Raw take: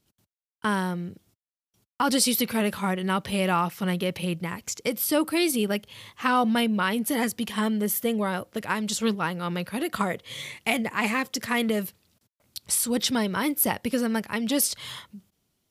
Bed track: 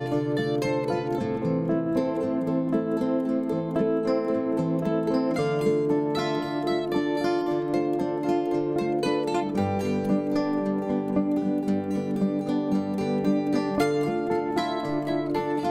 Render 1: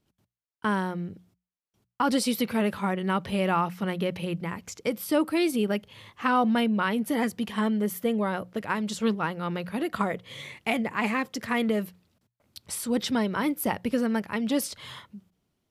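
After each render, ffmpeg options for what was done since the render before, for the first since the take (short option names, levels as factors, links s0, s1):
-af "highshelf=f=3500:g=-11,bandreject=f=60:t=h:w=6,bandreject=f=120:t=h:w=6,bandreject=f=180:t=h:w=6"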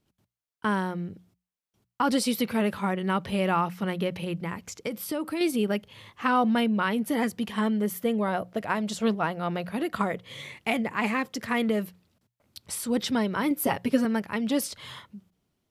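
-filter_complex "[0:a]asettb=1/sr,asplit=3[s0][s1][s2];[s0]atrim=end=4.084[s3];[s1]atrim=start=4.08:end=5.41,asetpts=PTS-STARTPTS,afade=t=in:d=0.004:c=qsin,afade=t=out:st=1.326:d=0.004:c=qsin,acompressor=threshold=0.0501:ratio=6:attack=3.2:release=140:knee=1:detection=peak[s4];[s2]atrim=start=5.406[s5];[s3][s4]acrossfade=d=0.004:c1=hsin:c2=qsin[s6];[s6][s5]acrossfade=d=0.004:c1=qsin:c2=hsin,asettb=1/sr,asplit=3[s7][s8][s9];[s7]atrim=end=8.284[s10];[s8]atrim=start=8.28:end=9.73,asetpts=PTS-STARTPTS,afade=t=in:d=0.004:c=qsin,afade=t=out:st=1.446:d=0.004:c=qsin,equalizer=f=680:t=o:w=0.29:g=10[s11];[s9]atrim=start=9.726[s12];[s10][s11]acrossfade=d=0.004:c1=hsin:c2=qsin[s13];[s13][s12]acrossfade=d=0.004:c1=qsin:c2=hsin,asettb=1/sr,asplit=3[s14][s15][s16];[s14]atrim=end=13.504[s17];[s15]atrim=start=13.5:end=14.05,asetpts=PTS-STARTPTS,afade=t=in:d=0.004:c=qsin,afade=t=out:st=0.546:d=0.004:c=qsin,aecho=1:1:7.3:0.79,atrim=end_sample=24255[s18];[s16]atrim=start=14.046[s19];[s17][s18]acrossfade=d=0.004:c1=hsin:c2=qsin[s20];[s20][s19]acrossfade=d=0.004:c1=qsin:c2=hsin"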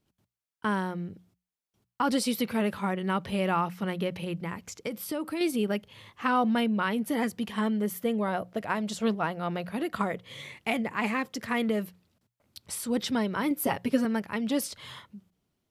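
-af "volume=0.794"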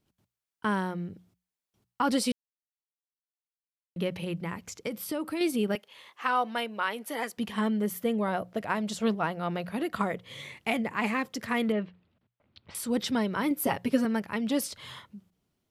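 -filter_complex "[0:a]asettb=1/sr,asplit=3[s0][s1][s2];[s0]atrim=end=5.754[s3];[s1]atrim=start=5.75:end=7.38,asetpts=PTS-STARTPTS,afade=t=in:d=0.004:c=qsin,afade=t=out:st=1.626:d=0.004:c=qsin,highpass=510[s4];[s2]atrim=start=7.376[s5];[s3][s4]acrossfade=d=0.004:c1=hsin:c2=qsin[s6];[s6][s5]acrossfade=d=0.004:c1=qsin:c2=hsin,asettb=1/sr,asplit=3[s7][s8][s9];[s7]atrim=end=11.724[s10];[s8]atrim=start=11.72:end=12.75,asetpts=PTS-STARTPTS,afade=t=in:d=0.004:c=qsin,afade=t=out:st=1.026:d=0.004:c=qsin,lowpass=f=3400:w=0.5412,lowpass=f=3400:w=1.3066[s11];[s9]atrim=start=12.746[s12];[s10][s11]acrossfade=d=0.004:c1=hsin:c2=qsin[s13];[s13][s12]acrossfade=d=0.004:c1=qsin:c2=hsin,asplit=3[s14][s15][s16];[s14]atrim=end=2.32,asetpts=PTS-STARTPTS,afade=t=out:st=2.316:d=0.004:c=hsin[s17];[s15]atrim=start=2.32:end=3.96,asetpts=PTS-STARTPTS,volume=0[s18];[s16]atrim=start=3.96,asetpts=PTS-STARTPTS,afade=t=in:d=0.004:c=hsin[s19];[s17][s18][s19]concat=n=3:v=0:a=1"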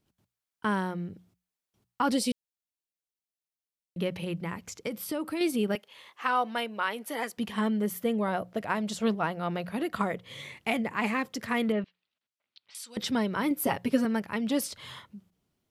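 -filter_complex "[0:a]asettb=1/sr,asplit=3[s0][s1][s2];[s0]atrim=end=2.134[s3];[s1]atrim=start=2.13:end=3.98,asetpts=PTS-STARTPTS,afade=t=in:d=0.004:c=qsin,afade=t=out:st=1.846:d=0.004:c=qsin,equalizer=f=1300:w=1.5:g=-11[s4];[s2]atrim=start=3.976[s5];[s3][s4]acrossfade=d=0.004:c1=hsin:c2=qsin[s6];[s6][s5]acrossfade=d=0.004:c1=qsin:c2=hsin,asettb=1/sr,asplit=3[s7][s8][s9];[s7]atrim=end=11.844[s10];[s8]atrim=start=11.84:end=12.97,asetpts=PTS-STARTPTS,afade=t=in:d=0.004:c=qsin,afade=t=out:st=1.126:d=0.004:c=qsin,bandpass=f=4900:t=q:w=0.97[s11];[s9]atrim=start=12.966[s12];[s10][s11]acrossfade=d=0.004:c1=hsin:c2=qsin[s13];[s13][s12]acrossfade=d=0.004:c1=qsin:c2=hsin"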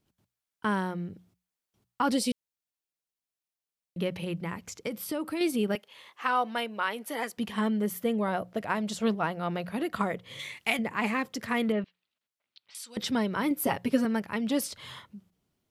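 -filter_complex "[0:a]asettb=1/sr,asplit=3[s0][s1][s2];[s0]atrim=end=10.394[s3];[s1]atrim=start=10.39:end=10.79,asetpts=PTS-STARTPTS,afade=t=in:d=0.004:c=qsin,afade=t=out:st=0.396:d=0.004:c=qsin,tiltshelf=f=1100:g=-6[s4];[s2]atrim=start=10.786[s5];[s3][s4]acrossfade=d=0.004:c1=hsin:c2=qsin[s6];[s6][s5]acrossfade=d=0.004:c1=qsin:c2=hsin"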